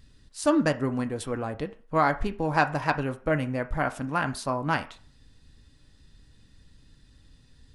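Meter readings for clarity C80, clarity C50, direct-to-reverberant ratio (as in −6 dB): 20.5 dB, 16.5 dB, 7.0 dB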